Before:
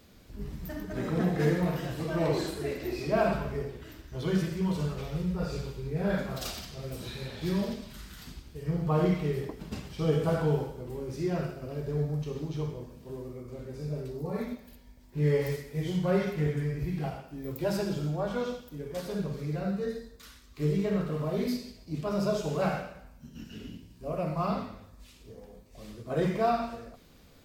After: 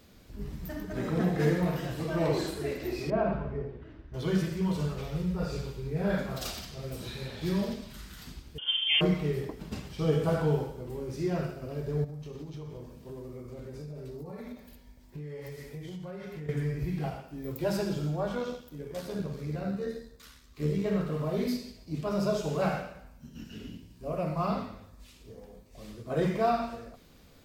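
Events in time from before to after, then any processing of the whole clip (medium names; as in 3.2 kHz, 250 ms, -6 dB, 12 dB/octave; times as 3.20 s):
3.10–4.14 s: tape spacing loss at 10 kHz 39 dB
8.58–9.01 s: frequency inversion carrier 3.3 kHz
12.04–16.49 s: compression 12:1, threshold -37 dBFS
18.35–20.86 s: AM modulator 75 Hz, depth 25%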